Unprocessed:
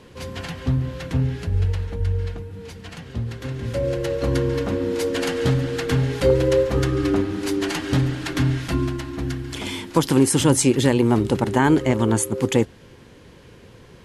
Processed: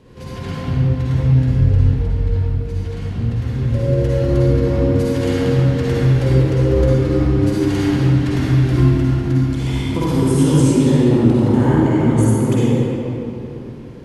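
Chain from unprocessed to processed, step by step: compression 2.5:1, threshold -20 dBFS, peak gain reduction 6.5 dB; bass shelf 480 Hz +9.5 dB; reverberation RT60 3.3 s, pre-delay 44 ms, DRR -9 dB; trim -8.5 dB

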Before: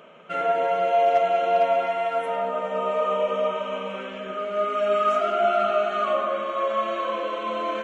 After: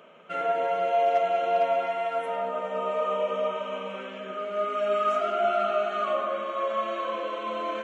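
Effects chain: high-pass 140 Hz 12 dB/octave; trim -3.5 dB

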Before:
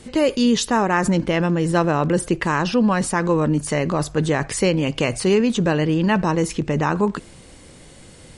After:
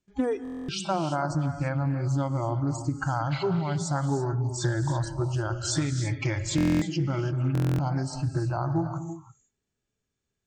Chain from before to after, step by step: gate -39 dBFS, range -16 dB; spectral noise reduction 28 dB; harmonic-percussive split harmonic +7 dB; compression 16:1, threshold -24 dBFS, peak gain reduction 18 dB; gated-style reverb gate 290 ms rising, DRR 8 dB; tape speed -20%; buffer glitch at 0.43/6.56/7.53 s, samples 1024, times 10; loudspeaker Doppler distortion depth 0.18 ms

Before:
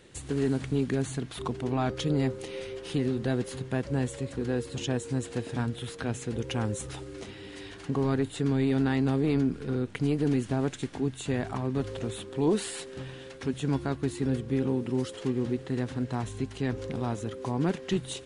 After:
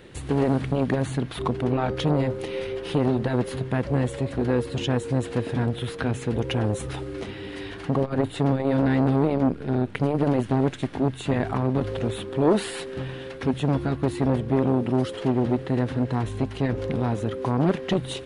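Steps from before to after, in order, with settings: peaking EQ 7.2 kHz -11.5 dB 1.3 oct; transformer saturation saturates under 410 Hz; trim +8.5 dB

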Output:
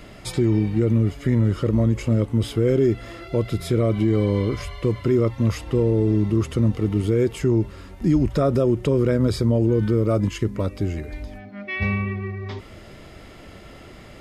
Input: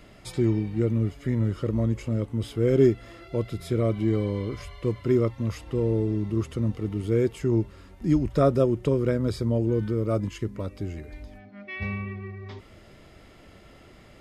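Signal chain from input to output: peak limiter -18 dBFS, peak gain reduction 9.5 dB; trim +8 dB

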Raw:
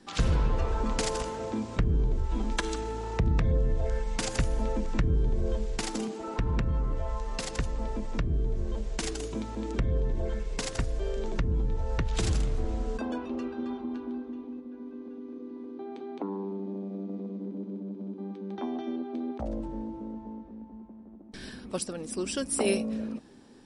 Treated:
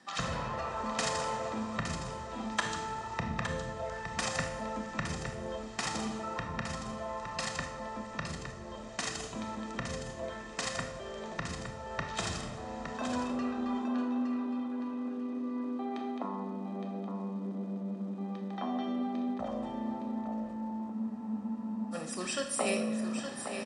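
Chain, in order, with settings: comb 1.6 ms, depth 58%; reverse; upward compressor, threshold -27 dBFS; reverse; Schroeder reverb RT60 0.66 s, combs from 25 ms, DRR 5 dB; crackle 430 per s -55 dBFS; cabinet simulation 200–9100 Hz, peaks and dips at 450 Hz -9 dB, 980 Hz +9 dB, 1.7 kHz +6 dB; on a send: delay 864 ms -8 dB; on the sum: spectral freeze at 20.94 s, 0.99 s; trim -3.5 dB

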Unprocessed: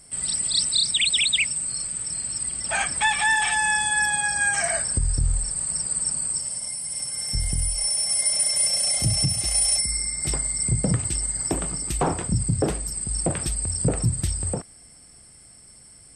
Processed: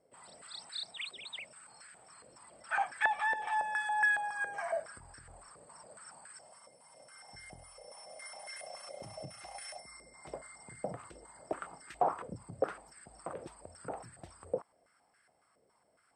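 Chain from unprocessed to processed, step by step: step-sequenced band-pass 7.2 Hz 510–1600 Hz

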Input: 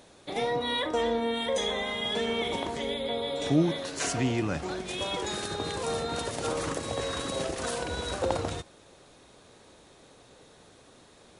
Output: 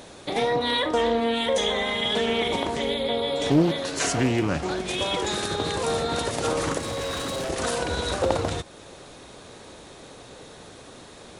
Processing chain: in parallel at +2 dB: compression, threshold -42 dBFS, peak gain reduction 21.5 dB; 6.78–7.50 s: on the sum: hard clipper -30 dBFS, distortion -20 dB; loudspeaker Doppler distortion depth 0.39 ms; trim +3.5 dB

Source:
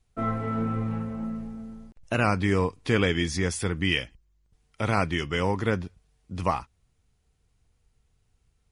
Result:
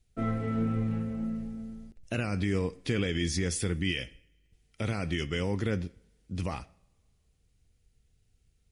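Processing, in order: two-slope reverb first 0.55 s, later 2.2 s, from -26 dB, DRR 18 dB; peak limiter -17 dBFS, peak gain reduction 8 dB; peaking EQ 1 kHz -12 dB 1.1 oct

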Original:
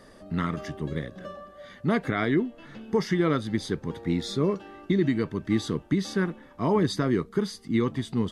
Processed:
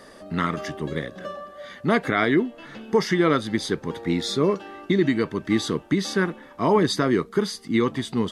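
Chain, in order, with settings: bass shelf 190 Hz -11.5 dB; trim +7 dB

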